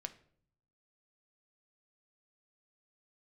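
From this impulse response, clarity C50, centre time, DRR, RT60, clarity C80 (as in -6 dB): 15.5 dB, 5 ms, 7.5 dB, 0.60 s, 19.5 dB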